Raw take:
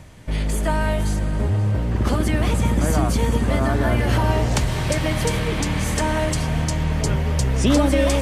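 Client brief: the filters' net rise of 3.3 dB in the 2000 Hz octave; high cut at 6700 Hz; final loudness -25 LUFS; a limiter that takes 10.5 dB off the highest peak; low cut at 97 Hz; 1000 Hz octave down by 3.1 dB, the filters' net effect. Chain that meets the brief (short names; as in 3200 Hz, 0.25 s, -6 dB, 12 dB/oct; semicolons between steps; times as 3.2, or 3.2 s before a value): HPF 97 Hz; LPF 6700 Hz; bell 1000 Hz -5 dB; bell 2000 Hz +5.5 dB; gain +1.5 dB; limiter -16 dBFS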